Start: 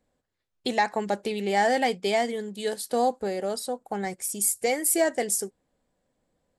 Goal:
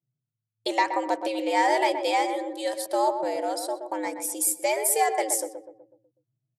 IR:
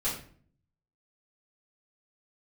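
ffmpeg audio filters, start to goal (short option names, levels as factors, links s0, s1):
-filter_complex "[0:a]anlmdn=0.00631,afreqshift=110,asplit=2[s0][s1];[s1]adelay=124,lowpass=f=1100:p=1,volume=0.501,asplit=2[s2][s3];[s3]adelay=124,lowpass=f=1100:p=1,volume=0.52,asplit=2[s4][s5];[s5]adelay=124,lowpass=f=1100:p=1,volume=0.52,asplit=2[s6][s7];[s7]adelay=124,lowpass=f=1100:p=1,volume=0.52,asplit=2[s8][s9];[s9]adelay=124,lowpass=f=1100:p=1,volume=0.52,asplit=2[s10][s11];[s11]adelay=124,lowpass=f=1100:p=1,volume=0.52[s12];[s0][s2][s4][s6][s8][s10][s12]amix=inputs=7:normalize=0"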